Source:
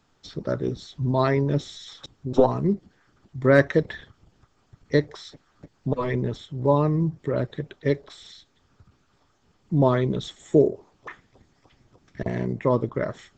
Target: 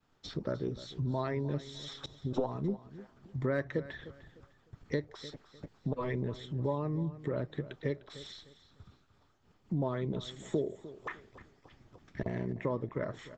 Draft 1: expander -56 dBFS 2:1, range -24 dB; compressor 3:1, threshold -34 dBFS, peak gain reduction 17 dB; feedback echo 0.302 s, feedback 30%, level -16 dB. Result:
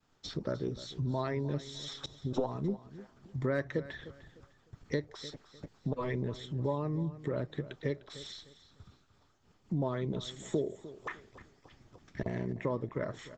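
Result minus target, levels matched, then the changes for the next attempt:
8000 Hz band +4.5 dB
add after compressor: bell 6600 Hz -5 dB 1.3 oct

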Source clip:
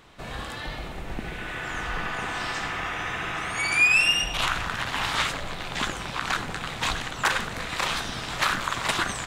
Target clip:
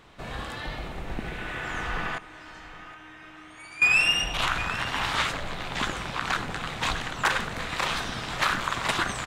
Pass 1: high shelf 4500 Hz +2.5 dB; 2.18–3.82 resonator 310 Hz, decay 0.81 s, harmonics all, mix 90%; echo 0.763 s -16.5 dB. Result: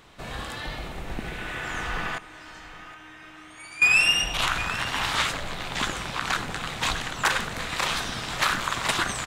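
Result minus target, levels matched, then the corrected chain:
8000 Hz band +3.5 dB
high shelf 4500 Hz -4.5 dB; 2.18–3.82 resonator 310 Hz, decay 0.81 s, harmonics all, mix 90%; echo 0.763 s -16.5 dB

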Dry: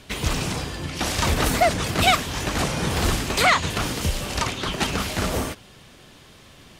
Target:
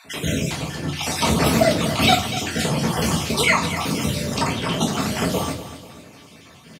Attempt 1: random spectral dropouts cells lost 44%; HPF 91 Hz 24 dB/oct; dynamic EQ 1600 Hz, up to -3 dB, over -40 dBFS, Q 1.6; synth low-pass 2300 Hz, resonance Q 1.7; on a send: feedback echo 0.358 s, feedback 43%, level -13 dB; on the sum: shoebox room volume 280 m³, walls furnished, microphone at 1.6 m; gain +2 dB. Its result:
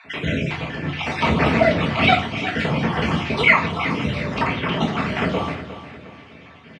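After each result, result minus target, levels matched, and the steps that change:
echo 0.113 s late; 2000 Hz band +4.0 dB
change: feedback echo 0.245 s, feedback 43%, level -13 dB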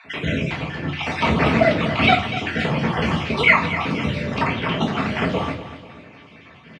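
2000 Hz band +3.5 dB
remove: synth low-pass 2300 Hz, resonance Q 1.7

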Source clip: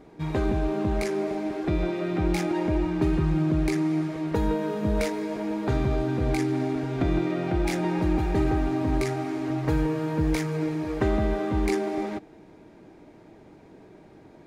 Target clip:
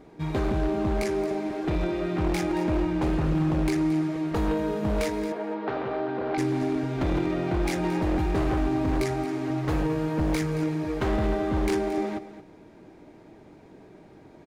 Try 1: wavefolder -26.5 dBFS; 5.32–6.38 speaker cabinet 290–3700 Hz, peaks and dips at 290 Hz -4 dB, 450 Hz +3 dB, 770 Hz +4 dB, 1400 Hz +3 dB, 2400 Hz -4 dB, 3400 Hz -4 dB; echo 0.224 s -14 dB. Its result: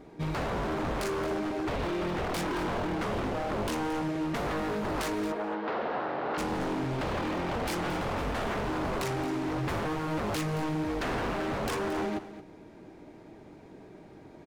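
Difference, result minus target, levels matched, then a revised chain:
wavefolder: distortion +18 dB
wavefolder -19 dBFS; 5.32–6.38 speaker cabinet 290–3700 Hz, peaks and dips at 290 Hz -4 dB, 450 Hz +3 dB, 770 Hz +4 dB, 1400 Hz +3 dB, 2400 Hz -4 dB, 3400 Hz -4 dB; echo 0.224 s -14 dB

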